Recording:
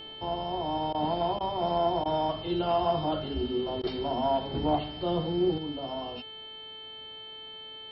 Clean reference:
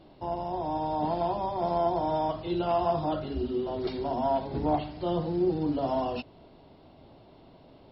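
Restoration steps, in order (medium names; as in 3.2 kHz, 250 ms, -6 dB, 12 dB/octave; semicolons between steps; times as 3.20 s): de-hum 438.1 Hz, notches 10; band-stop 3.1 kHz, Q 30; interpolate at 0.93/1.39/2.04/3.82 s, 14 ms; trim 0 dB, from 5.58 s +7.5 dB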